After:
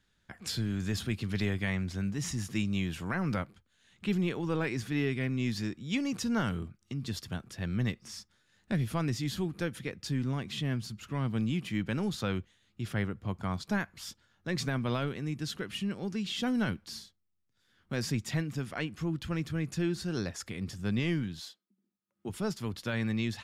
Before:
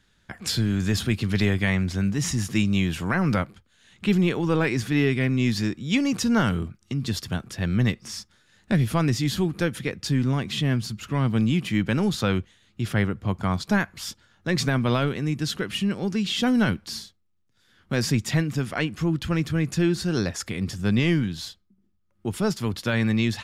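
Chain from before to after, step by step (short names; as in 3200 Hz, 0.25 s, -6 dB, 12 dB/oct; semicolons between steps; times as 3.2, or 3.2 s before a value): 21.39–22.28 HPF 270 Hz -> 130 Hz 24 dB/oct; gain -9 dB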